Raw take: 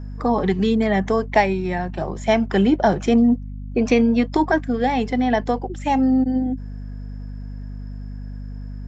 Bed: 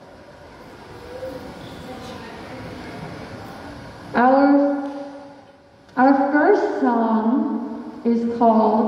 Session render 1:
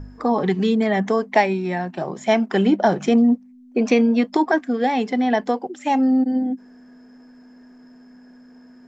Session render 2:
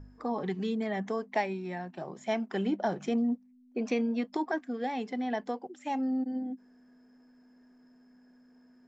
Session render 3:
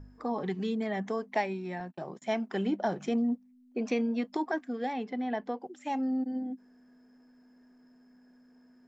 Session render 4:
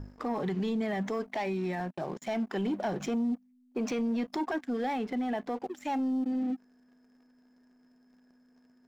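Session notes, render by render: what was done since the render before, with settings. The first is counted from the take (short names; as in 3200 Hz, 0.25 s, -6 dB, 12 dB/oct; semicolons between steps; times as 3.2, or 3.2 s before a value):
de-hum 50 Hz, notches 4
gain -13 dB
1.8–2.22 gate -48 dBFS, range -31 dB; 4.93–5.61 air absorption 150 m
sample leveller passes 2; limiter -25.5 dBFS, peak gain reduction 9.5 dB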